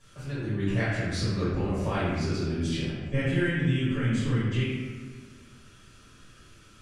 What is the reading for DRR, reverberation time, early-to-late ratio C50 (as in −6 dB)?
−12.5 dB, 1.5 s, −2.0 dB